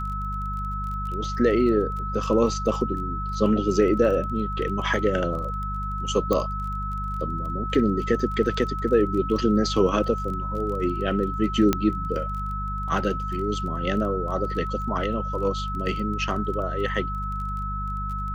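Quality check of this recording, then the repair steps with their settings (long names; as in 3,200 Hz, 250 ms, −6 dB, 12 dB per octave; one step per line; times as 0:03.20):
surface crackle 22 per second −33 dBFS
mains hum 50 Hz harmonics 4 −31 dBFS
whistle 1,300 Hz −30 dBFS
0:06.33: click −11 dBFS
0:11.73: click −7 dBFS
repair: click removal
hum removal 50 Hz, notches 4
notch filter 1,300 Hz, Q 30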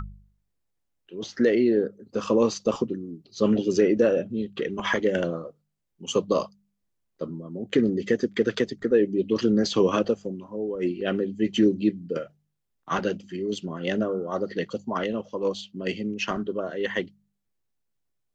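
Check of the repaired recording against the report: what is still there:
0:06.33: click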